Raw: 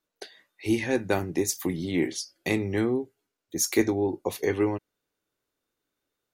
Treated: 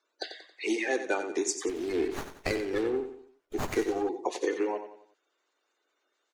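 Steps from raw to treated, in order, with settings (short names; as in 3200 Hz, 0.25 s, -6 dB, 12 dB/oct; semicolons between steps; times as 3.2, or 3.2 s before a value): bin magnitudes rounded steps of 30 dB; elliptic band-pass 340–7700 Hz, stop band 40 dB; compressor 2:1, threshold -40 dBFS, peak gain reduction 11.5 dB; feedback echo 91 ms, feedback 40%, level -10 dB; 1.69–4.09 running maximum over 9 samples; gain +7.5 dB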